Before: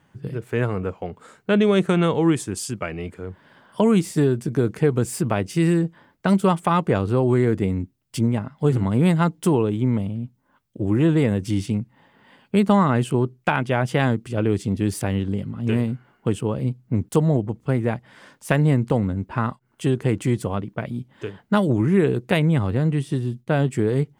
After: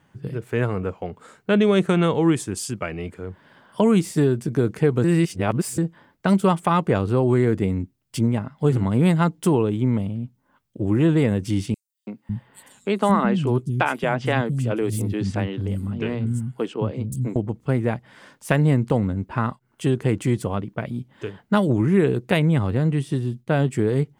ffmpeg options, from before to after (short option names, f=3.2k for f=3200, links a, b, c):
-filter_complex "[0:a]asettb=1/sr,asplit=3[a][b][c];[a]atrim=end=11.744[d];[b]atrim=start=11.74:end=17.36,asetpts=PTS-STARTPTS,afade=t=in:d=0.004:c=qsin,afade=t=out:st=5.616:d=0.004:c=qsin,acrossover=split=230|6000[e][f][g];[f]adelay=330[h];[e]adelay=550[i];[i][h][g]amix=inputs=3:normalize=0,atrim=end_sample=247842[j];[c]atrim=start=17.356[k];[d][j]acrossfade=d=0.004:c1=hsin:c2=qsin[l];[l][k]acrossfade=d=0.004:c1=qsin:c2=hsin,asplit=3[m][n][o];[m]atrim=end=5.042[p];[n]atrim=start=5.038:end=5.782,asetpts=PTS-STARTPTS,areverse[q];[o]atrim=start=5.778[r];[p][q]acrossfade=d=0.004:c1=hsin:c2=hsin[s];[s][r]acrossfade=d=0.004:c1=hsin:c2=hsin"